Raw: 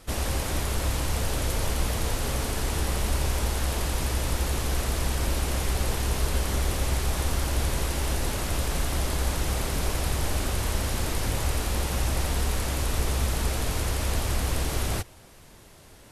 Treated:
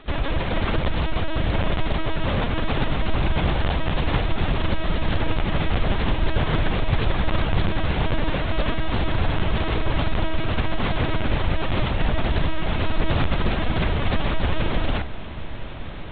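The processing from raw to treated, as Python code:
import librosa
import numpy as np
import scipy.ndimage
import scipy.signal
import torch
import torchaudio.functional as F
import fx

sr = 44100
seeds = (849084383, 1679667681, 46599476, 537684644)

y = fx.lpc_vocoder(x, sr, seeds[0], excitation='pitch_kept', order=16)
y = fx.echo_diffused(y, sr, ms=1449, feedback_pct=62, wet_db=-14)
y = fx.doppler_dist(y, sr, depth_ms=0.19)
y = y * 10.0 ** (5.5 / 20.0)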